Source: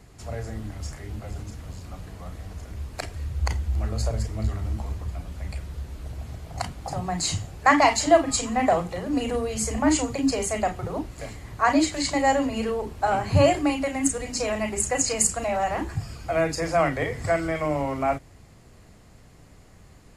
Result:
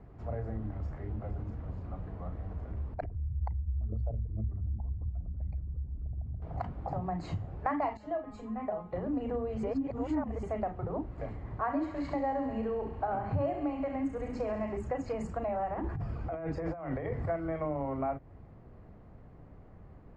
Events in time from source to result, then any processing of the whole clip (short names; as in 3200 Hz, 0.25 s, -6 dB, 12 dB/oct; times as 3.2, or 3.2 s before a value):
2.94–6.42 formant sharpening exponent 2
7.97–8.93 resonator 210 Hz, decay 0.17 s, mix 90%
9.63–10.43 reverse
11.39–14.77 thinning echo 68 ms, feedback 75%, high-pass 750 Hz, level -8 dB
15.74–17.29 negative-ratio compressor -31 dBFS
whole clip: LPF 1100 Hz 12 dB/oct; compressor 3:1, threshold -31 dBFS; gain -1 dB